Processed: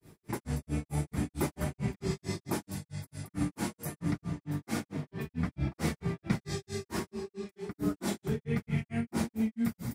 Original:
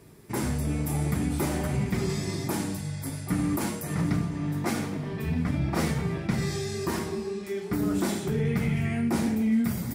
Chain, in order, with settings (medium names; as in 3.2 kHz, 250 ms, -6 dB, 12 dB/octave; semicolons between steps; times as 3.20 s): granulator 185 ms, grains 4.5 per s, spray 31 ms, pitch spread up and down by 0 st; trim -1.5 dB